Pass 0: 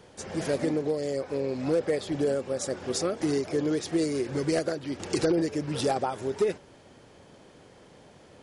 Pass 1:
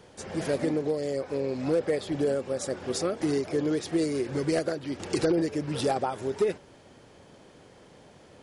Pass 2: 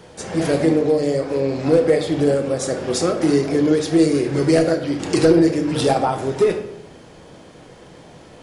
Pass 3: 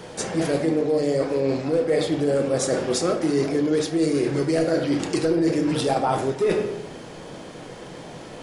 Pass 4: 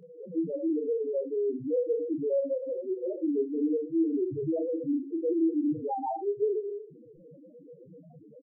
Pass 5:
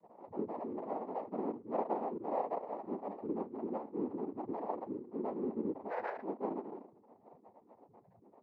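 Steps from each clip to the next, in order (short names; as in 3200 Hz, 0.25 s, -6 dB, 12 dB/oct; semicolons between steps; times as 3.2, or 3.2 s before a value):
dynamic EQ 6300 Hz, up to -3 dB, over -51 dBFS, Q 1.6
shoebox room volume 180 m³, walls mixed, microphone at 0.63 m; gain +8 dB
bell 67 Hz -8.5 dB 1 oct; reverse; compressor 6:1, threshold -24 dBFS, peak gain reduction 14 dB; reverse; gain +5 dB
LPF 3300 Hz 24 dB/oct; loudest bins only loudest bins 1; doubler 27 ms -10 dB
flange 0.26 Hz, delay 5.1 ms, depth 5.7 ms, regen +64%; HPF 330 Hz 12 dB/oct; noise vocoder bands 6; gain -3 dB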